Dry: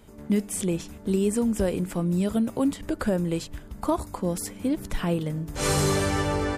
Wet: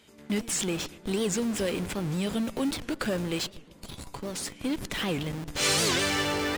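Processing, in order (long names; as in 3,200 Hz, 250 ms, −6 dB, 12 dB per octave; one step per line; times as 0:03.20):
0:03.53–0:04.07: healed spectral selection 240–2,200 Hz
meter weighting curve D
in parallel at −5 dB: comparator with hysteresis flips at −31.5 dBFS
0:03.46–0:04.61: on the sum: tuned comb filter 140 Hz, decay 0.15 s, harmonics all, mix 50%
on a send: feedback echo with a low-pass in the loop 119 ms, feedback 66%, low-pass 1,900 Hz, level −20 dB
on the sum: wow of a warped record 78 rpm, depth 250 cents
level −6 dB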